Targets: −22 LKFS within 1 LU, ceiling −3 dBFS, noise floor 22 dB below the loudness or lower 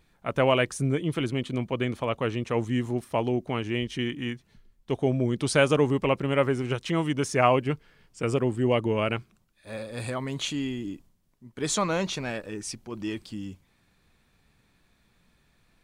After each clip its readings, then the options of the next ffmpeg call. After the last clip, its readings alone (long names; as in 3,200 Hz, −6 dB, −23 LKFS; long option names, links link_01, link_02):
integrated loudness −27.5 LKFS; sample peak −6.0 dBFS; target loudness −22.0 LKFS
→ -af "volume=5.5dB,alimiter=limit=-3dB:level=0:latency=1"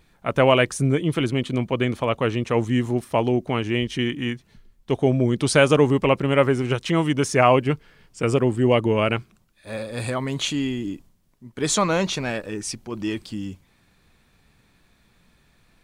integrated loudness −22.0 LKFS; sample peak −3.0 dBFS; background noise floor −61 dBFS